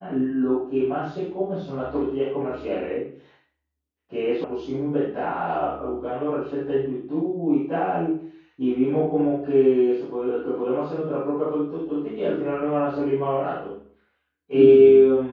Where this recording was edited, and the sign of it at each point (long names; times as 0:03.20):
0:04.44: cut off before it has died away